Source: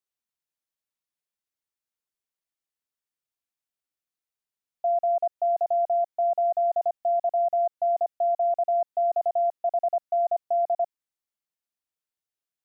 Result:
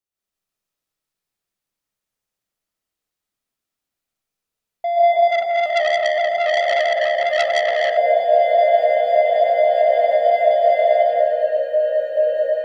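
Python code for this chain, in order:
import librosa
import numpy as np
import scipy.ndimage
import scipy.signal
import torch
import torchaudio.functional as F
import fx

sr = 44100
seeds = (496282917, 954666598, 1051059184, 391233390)

y = fx.low_shelf(x, sr, hz=380.0, db=6.5)
y = fx.leveller(y, sr, passes=1)
y = fx.echo_pitch(y, sr, ms=223, semitones=-2, count=3, db_per_echo=-6.0)
y = y + 10.0 ** (-5.0 / 20.0) * np.pad(y, (int(170 * sr / 1000.0), 0))[:len(y)]
y = fx.rev_freeverb(y, sr, rt60_s=1.5, hf_ratio=0.85, predelay_ms=100, drr_db=-7.0)
y = fx.transformer_sat(y, sr, knee_hz=2400.0, at=(5.29, 7.97))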